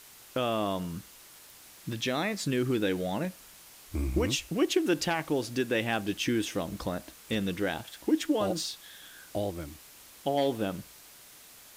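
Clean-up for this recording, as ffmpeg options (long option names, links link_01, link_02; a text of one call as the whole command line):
ffmpeg -i in.wav -af "afwtdn=0.0028" out.wav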